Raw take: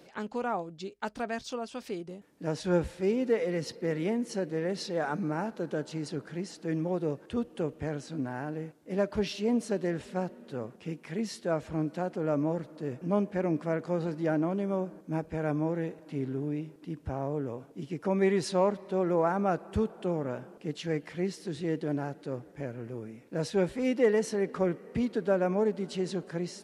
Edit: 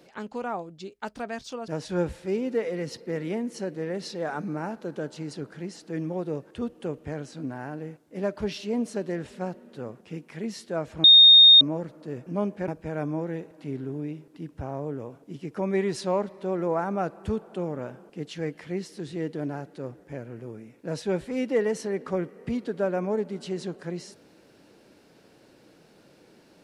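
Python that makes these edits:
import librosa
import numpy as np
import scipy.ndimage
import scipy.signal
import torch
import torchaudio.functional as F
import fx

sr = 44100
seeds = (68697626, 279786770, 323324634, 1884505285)

y = fx.edit(x, sr, fx.cut(start_s=1.68, length_s=0.75),
    fx.bleep(start_s=11.79, length_s=0.57, hz=3690.0, db=-9.0),
    fx.cut(start_s=13.43, length_s=1.73), tone=tone)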